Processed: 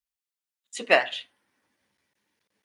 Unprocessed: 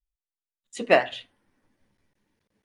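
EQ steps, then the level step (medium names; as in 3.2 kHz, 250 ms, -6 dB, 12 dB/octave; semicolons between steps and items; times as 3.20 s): high-pass 45 Hz; tilt EQ +3.5 dB/octave; treble shelf 6 kHz -10.5 dB; 0.0 dB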